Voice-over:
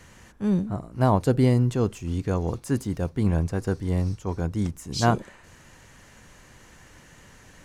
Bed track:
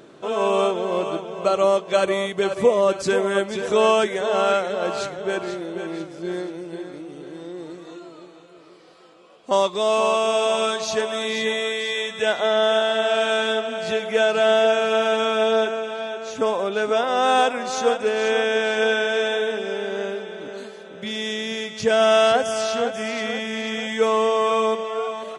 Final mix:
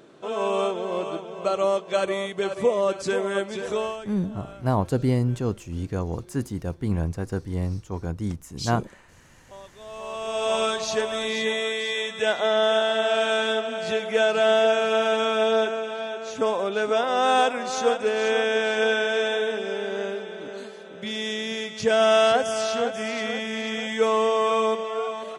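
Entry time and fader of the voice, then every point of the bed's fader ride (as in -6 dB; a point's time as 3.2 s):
3.65 s, -2.5 dB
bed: 3.69 s -4.5 dB
4.15 s -25.5 dB
9.72 s -25.5 dB
10.54 s -2 dB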